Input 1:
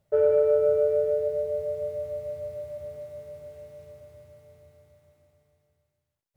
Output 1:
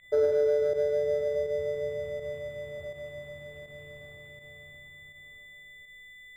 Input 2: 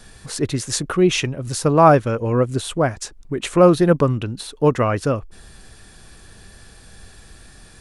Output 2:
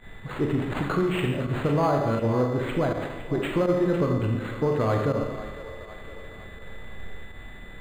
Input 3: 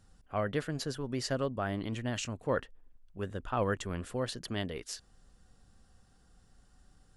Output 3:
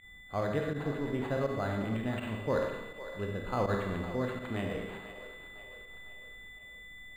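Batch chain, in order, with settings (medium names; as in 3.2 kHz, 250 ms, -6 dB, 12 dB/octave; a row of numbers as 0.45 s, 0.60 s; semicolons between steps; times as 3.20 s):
low-pass 8.5 kHz 12 dB/octave; treble shelf 4.7 kHz -8 dB; compression 6:1, threshold -20 dBFS; Schroeder reverb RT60 1.1 s, combs from 28 ms, DRR 1.5 dB; added noise brown -68 dBFS; saturation -14.5 dBFS; whistle 2 kHz -47 dBFS; volume shaper 82 bpm, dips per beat 1, -14 dB, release 61 ms; two-band feedback delay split 390 Hz, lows 128 ms, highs 506 ms, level -13 dB; decimation joined by straight lines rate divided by 8×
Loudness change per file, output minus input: -4.0 LU, -7.0 LU, +1.0 LU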